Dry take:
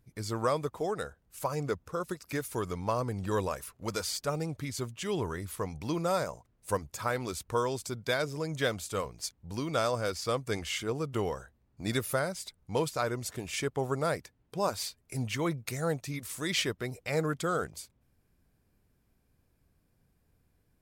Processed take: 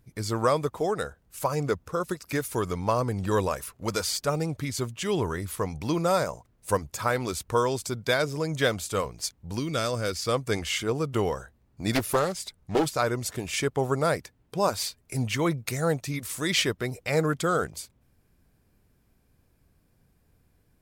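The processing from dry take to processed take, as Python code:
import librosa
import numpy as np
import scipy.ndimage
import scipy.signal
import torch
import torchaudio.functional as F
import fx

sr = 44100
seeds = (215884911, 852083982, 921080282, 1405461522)

y = fx.peak_eq(x, sr, hz=840.0, db=fx.line((9.58, -13.0), (10.32, -3.5)), octaves=1.3, at=(9.58, 10.32), fade=0.02)
y = fx.doppler_dist(y, sr, depth_ms=0.77, at=(11.95, 12.86))
y = y * librosa.db_to_amplitude(5.5)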